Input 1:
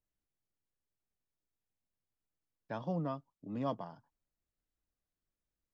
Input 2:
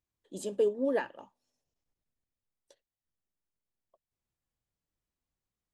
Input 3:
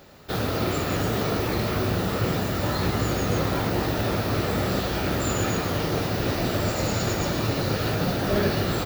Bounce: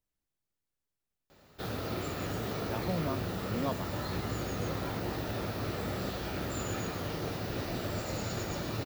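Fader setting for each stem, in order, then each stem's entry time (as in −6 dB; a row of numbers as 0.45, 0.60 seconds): +1.5 dB, muted, −10.5 dB; 0.00 s, muted, 1.30 s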